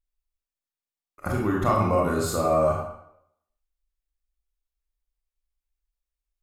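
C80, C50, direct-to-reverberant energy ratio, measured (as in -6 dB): 5.0 dB, 2.0 dB, -2.5 dB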